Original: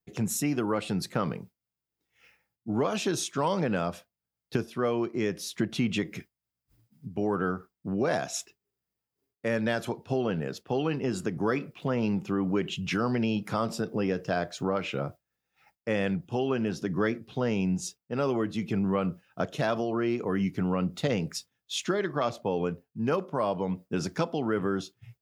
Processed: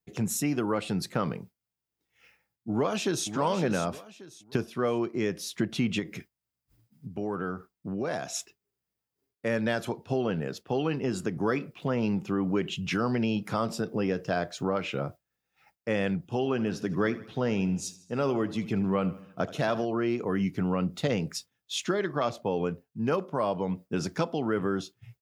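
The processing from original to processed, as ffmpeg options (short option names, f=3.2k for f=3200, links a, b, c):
-filter_complex "[0:a]asplit=2[a][b];[b]afade=t=in:st=2.69:d=0.01,afade=t=out:st=3.29:d=0.01,aecho=0:1:570|1140|1710:0.354813|0.106444|0.0319332[c];[a][c]amix=inputs=2:normalize=0,asettb=1/sr,asplit=3[d][e][f];[d]atrim=end=5.994[g];[e]atrim=start=5.99:end=8.35,asetpts=PTS-STARTPTS,afade=t=in:d=0.004:c=qsin,afade=t=out:st=2.356:d=0.004:c=qsin,acompressor=threshold=-34dB:ratio=1.5:attack=3.2:release=140:knee=1:detection=peak[h];[f]atrim=start=8.346[i];[g][h]acrossfade=d=0.004:c1=hsin:c2=qsin[j];[j][i]acrossfade=d=0.004:c1=qsin:c2=hsin,asplit=3[k][l][m];[k]afade=t=out:st=16.42:d=0.02[n];[l]aecho=1:1:78|156|234|312|390:0.141|0.0735|0.0382|0.0199|0.0103,afade=t=in:st=16.42:d=0.02,afade=t=out:st=19.84:d=0.02[o];[m]afade=t=in:st=19.84:d=0.02[p];[n][o][p]amix=inputs=3:normalize=0"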